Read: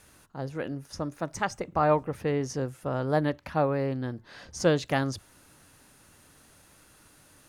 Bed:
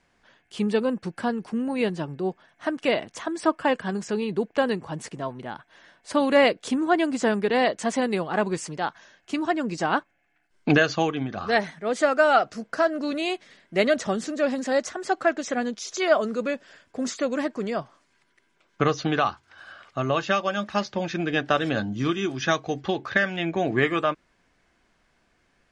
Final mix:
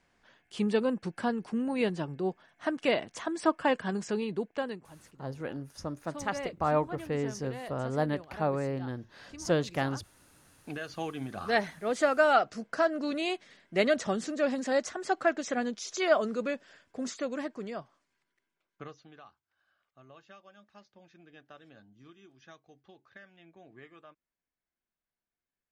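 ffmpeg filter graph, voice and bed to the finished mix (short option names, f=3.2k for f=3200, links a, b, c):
-filter_complex "[0:a]adelay=4850,volume=-4dB[a];[1:a]volume=12dB,afade=t=out:st=4.08:d=0.85:silence=0.149624,afade=t=in:st=10.79:d=0.8:silence=0.158489,afade=t=out:st=16.24:d=2.82:silence=0.0530884[b];[a][b]amix=inputs=2:normalize=0"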